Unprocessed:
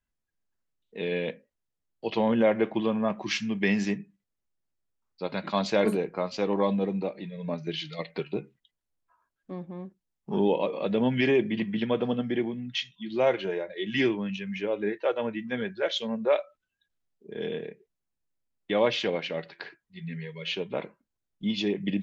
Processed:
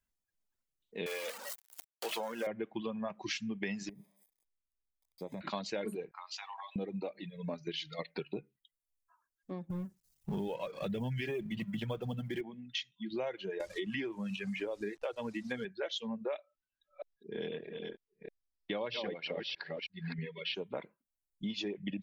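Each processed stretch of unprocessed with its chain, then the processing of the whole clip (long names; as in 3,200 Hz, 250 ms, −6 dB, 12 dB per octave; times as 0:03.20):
0:01.06–0:02.47: converter with a step at zero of −29.5 dBFS + high-pass filter 520 Hz
0:03.89–0:05.41: spike at every zero crossing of −26.5 dBFS + moving average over 31 samples + downward compressor, threshold −33 dBFS
0:06.11–0:06.76: Butterworth high-pass 770 Hz 48 dB per octave + downward compressor 10 to 1, threshold −37 dBFS
0:09.70–0:12.41: mu-law and A-law mismatch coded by mu + low shelf with overshoot 190 Hz +8.5 dB, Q 1.5
0:13.60–0:15.65: hold until the input has moved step −46 dBFS + high-frequency loss of the air 78 metres + multiband upward and downward compressor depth 70%
0:16.39–0:20.55: delay that plays each chunk backwards 316 ms, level −4 dB + linear-phase brick-wall low-pass 5,800 Hz
whole clip: reverb reduction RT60 1.3 s; high-shelf EQ 5,300 Hz +6 dB; downward compressor, threshold −32 dBFS; level −2.5 dB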